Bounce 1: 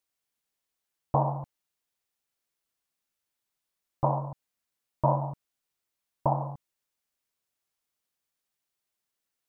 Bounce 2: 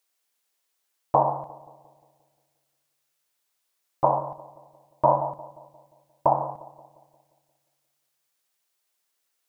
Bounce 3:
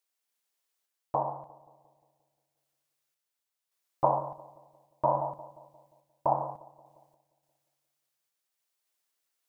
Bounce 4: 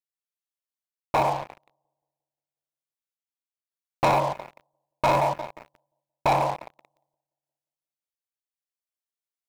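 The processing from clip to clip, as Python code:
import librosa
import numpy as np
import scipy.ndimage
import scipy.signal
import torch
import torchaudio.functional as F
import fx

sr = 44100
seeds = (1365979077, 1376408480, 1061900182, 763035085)

y1 = fx.bass_treble(x, sr, bass_db=-15, treble_db=2)
y1 = fx.echo_filtered(y1, sr, ms=176, feedback_pct=57, hz=1200.0, wet_db=-17.0)
y1 = F.gain(torch.from_numpy(y1), 7.0).numpy()
y2 = fx.tremolo_random(y1, sr, seeds[0], hz=3.5, depth_pct=55)
y2 = F.gain(torch.from_numpy(y2), -4.0).numpy()
y3 = fx.leveller(y2, sr, passes=5)
y3 = F.gain(torch.from_numpy(y3), -5.5).numpy()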